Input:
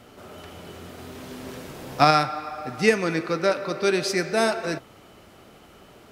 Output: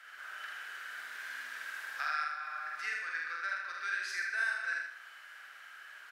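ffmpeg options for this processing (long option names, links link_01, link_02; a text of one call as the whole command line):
ffmpeg -i in.wav -filter_complex "[0:a]acompressor=threshold=-37dB:ratio=3,highpass=frequency=1600:width_type=q:width=10,highshelf=frequency=11000:gain=-3.5,asplit=2[link_01][link_02];[link_02]adelay=47,volume=-3dB[link_03];[link_01][link_03]amix=inputs=2:normalize=0,aecho=1:1:79|158|237|316|395:0.596|0.22|0.0815|0.0302|0.0112,volume=-7.5dB" out.wav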